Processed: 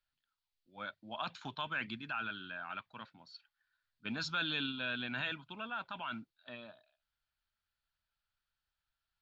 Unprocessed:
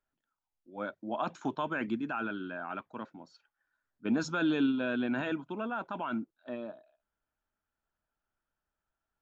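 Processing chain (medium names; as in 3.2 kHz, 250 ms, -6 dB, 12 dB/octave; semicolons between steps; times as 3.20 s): FFT filter 120 Hz 0 dB, 330 Hz -16 dB, 4.4 kHz +11 dB, 6.2 kHz -5 dB; trim -1.5 dB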